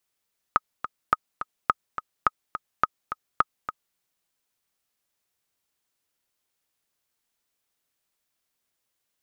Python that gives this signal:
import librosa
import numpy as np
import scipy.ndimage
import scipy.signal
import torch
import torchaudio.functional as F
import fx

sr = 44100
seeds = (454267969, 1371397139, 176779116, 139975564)

y = fx.click_track(sr, bpm=211, beats=2, bars=6, hz=1260.0, accent_db=11.0, level_db=-5.0)